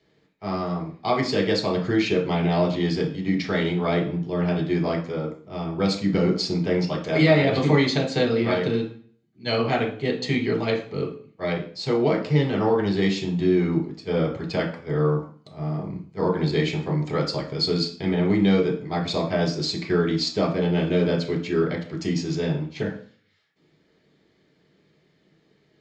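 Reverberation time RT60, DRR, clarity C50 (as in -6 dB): 0.45 s, 0.5 dB, 9.0 dB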